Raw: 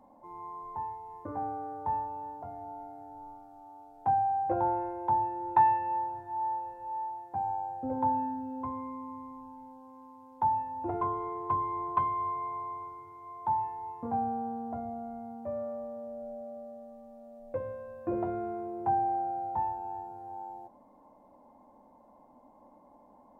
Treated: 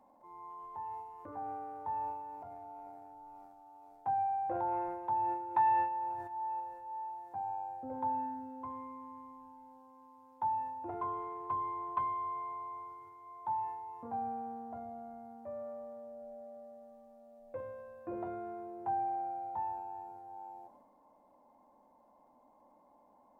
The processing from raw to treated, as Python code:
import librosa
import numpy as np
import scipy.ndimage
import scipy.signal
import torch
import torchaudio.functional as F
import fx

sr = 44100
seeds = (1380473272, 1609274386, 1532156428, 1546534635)

y = fx.low_shelf(x, sr, hz=390.0, db=-8.0)
y = fx.transient(y, sr, attack_db=-1, sustain_db=fx.steps((0.0, 11.0), (6.59, 5.0)))
y = F.gain(torch.from_numpy(y), -4.5).numpy()